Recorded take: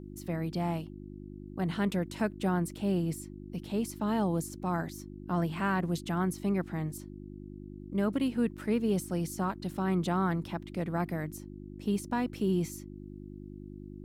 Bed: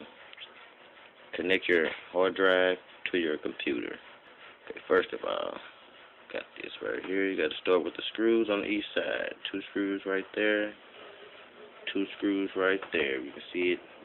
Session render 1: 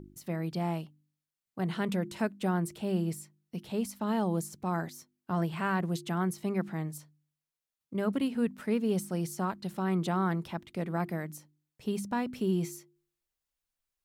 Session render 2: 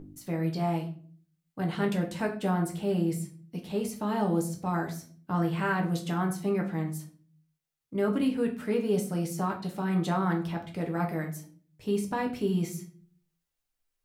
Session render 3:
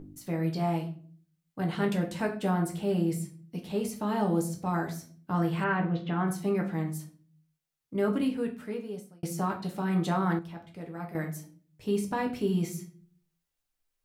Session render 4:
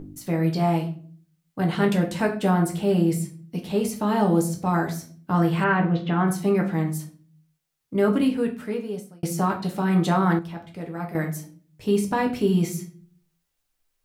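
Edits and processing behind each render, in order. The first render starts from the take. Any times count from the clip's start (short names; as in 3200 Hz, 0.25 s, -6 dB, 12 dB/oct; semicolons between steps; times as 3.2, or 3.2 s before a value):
de-hum 50 Hz, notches 7
shoebox room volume 40 m³, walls mixed, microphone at 0.5 m
5.64–6.28 LPF 3200 Hz 24 dB/oct; 8.07–9.23 fade out; 10.39–11.15 gain -9 dB
gain +7 dB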